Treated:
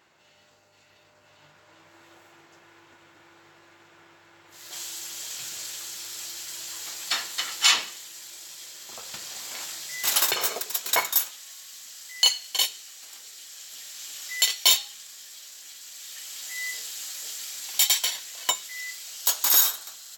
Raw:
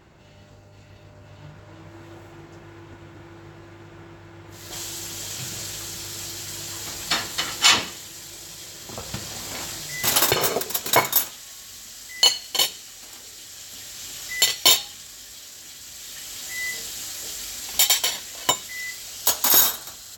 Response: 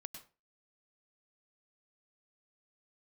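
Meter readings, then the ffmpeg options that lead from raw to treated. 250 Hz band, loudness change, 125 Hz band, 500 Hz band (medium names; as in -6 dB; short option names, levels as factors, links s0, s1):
-15.0 dB, -3.0 dB, under -20 dB, -10.5 dB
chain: -af "highpass=f=1200:p=1,volume=0.75"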